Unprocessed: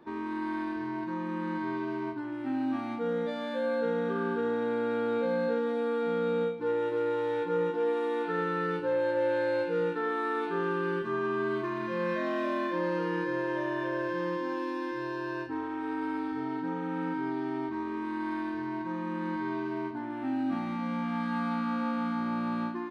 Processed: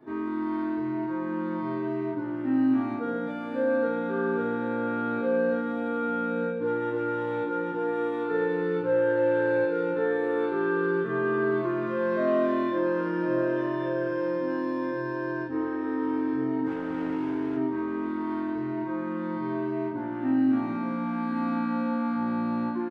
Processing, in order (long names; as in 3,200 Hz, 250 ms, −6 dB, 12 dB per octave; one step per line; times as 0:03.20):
parametric band 3,500 Hz −6.5 dB 2.3 octaves
0:16.66–0:17.57: gain into a clipping stage and back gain 35 dB
single-tap delay 1,051 ms −13.5 dB
convolution reverb, pre-delay 3 ms, DRR −7.5 dB
level −4 dB